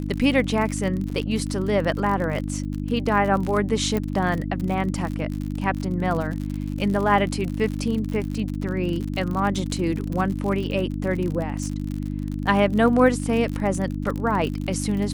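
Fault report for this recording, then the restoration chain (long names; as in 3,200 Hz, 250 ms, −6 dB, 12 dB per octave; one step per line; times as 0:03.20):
surface crackle 54 per second −28 dBFS
mains hum 50 Hz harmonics 6 −28 dBFS
0:01.10: drop-out 3.8 ms
0:03.97: click −13 dBFS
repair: click removal
hum removal 50 Hz, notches 6
repair the gap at 0:01.10, 3.8 ms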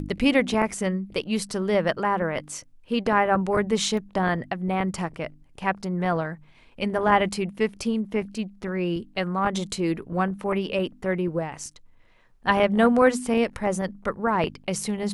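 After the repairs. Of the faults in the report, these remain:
0:03.97: click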